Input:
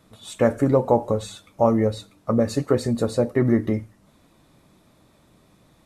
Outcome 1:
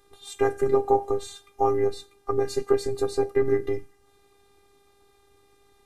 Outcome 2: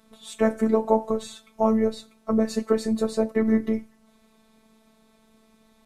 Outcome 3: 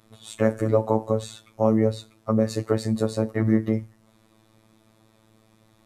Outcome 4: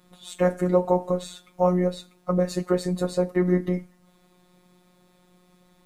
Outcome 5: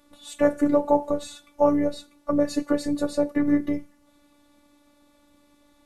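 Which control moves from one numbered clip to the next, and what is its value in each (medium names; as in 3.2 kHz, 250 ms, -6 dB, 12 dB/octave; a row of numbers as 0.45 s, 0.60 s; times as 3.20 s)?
robot voice, frequency: 400 Hz, 220 Hz, 110 Hz, 180 Hz, 290 Hz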